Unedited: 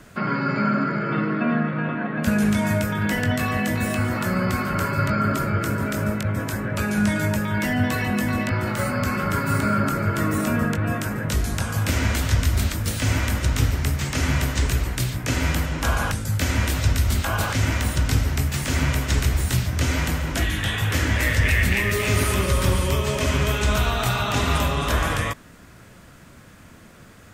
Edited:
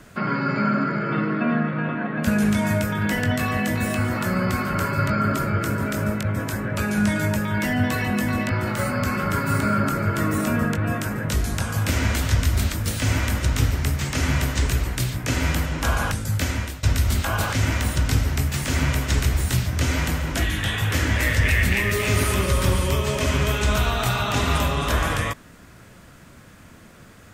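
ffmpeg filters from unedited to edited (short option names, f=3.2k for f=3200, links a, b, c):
-filter_complex "[0:a]asplit=2[a][b];[a]atrim=end=16.83,asetpts=PTS-STARTPTS,afade=t=out:st=16.38:d=0.45:silence=0.11885[c];[b]atrim=start=16.83,asetpts=PTS-STARTPTS,afade=t=in:d=0.004:c=hsin:silence=0.11885[d];[c][d]concat=n=2:v=0:a=1"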